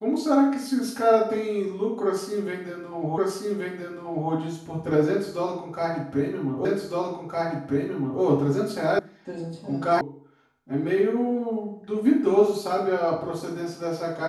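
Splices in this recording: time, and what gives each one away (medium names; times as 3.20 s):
3.18 s: repeat of the last 1.13 s
6.65 s: repeat of the last 1.56 s
8.99 s: sound stops dead
10.01 s: sound stops dead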